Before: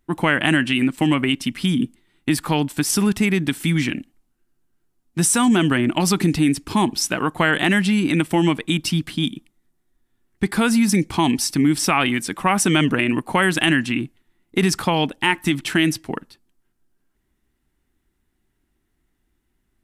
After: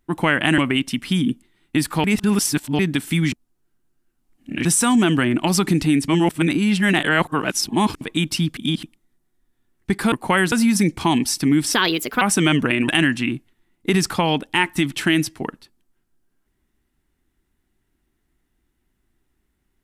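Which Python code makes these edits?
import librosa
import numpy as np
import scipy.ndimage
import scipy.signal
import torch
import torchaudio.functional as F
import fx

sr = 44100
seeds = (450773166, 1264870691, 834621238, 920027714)

y = fx.edit(x, sr, fx.cut(start_s=0.58, length_s=0.53),
    fx.reverse_span(start_s=2.57, length_s=0.75),
    fx.reverse_span(start_s=3.85, length_s=1.33),
    fx.reverse_span(start_s=6.61, length_s=1.93),
    fx.reverse_span(start_s=9.1, length_s=0.26),
    fx.speed_span(start_s=11.87, length_s=0.63, speed=1.33),
    fx.move(start_s=13.17, length_s=0.4, to_s=10.65), tone=tone)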